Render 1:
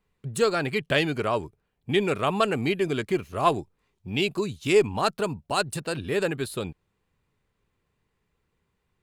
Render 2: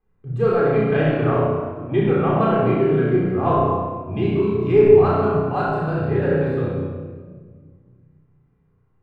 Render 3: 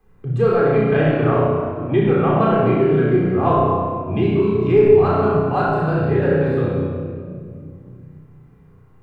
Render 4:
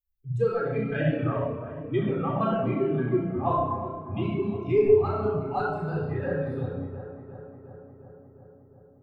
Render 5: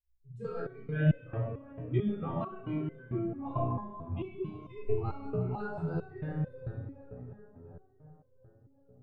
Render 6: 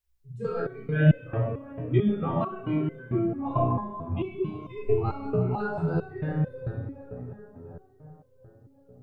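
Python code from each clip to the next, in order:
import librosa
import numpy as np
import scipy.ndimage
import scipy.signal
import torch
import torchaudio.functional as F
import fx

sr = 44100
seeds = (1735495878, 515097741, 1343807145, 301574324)

y1 = scipy.signal.sosfilt(scipy.signal.butter(2, 1300.0, 'lowpass', fs=sr, output='sos'), x)
y1 = fx.room_flutter(y1, sr, wall_m=5.6, rt60_s=0.57)
y1 = fx.room_shoebox(y1, sr, seeds[0], volume_m3=2000.0, walls='mixed', distance_m=3.8)
y1 = F.gain(torch.from_numpy(y1), -2.5).numpy()
y2 = fx.band_squash(y1, sr, depth_pct=40)
y2 = F.gain(torch.from_numpy(y2), 2.0).numpy()
y3 = fx.bin_expand(y2, sr, power=2.0)
y3 = fx.echo_filtered(y3, sr, ms=356, feedback_pct=74, hz=2200.0, wet_db=-13.5)
y3 = F.gain(torch.from_numpy(y3), -4.5).numpy()
y4 = fx.low_shelf(y3, sr, hz=140.0, db=12.0)
y4 = fx.resonator_held(y4, sr, hz=4.5, low_hz=62.0, high_hz=510.0)
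y5 = fx.low_shelf(y4, sr, hz=71.0, db=-6.5)
y5 = F.gain(torch.from_numpy(y5), 8.0).numpy()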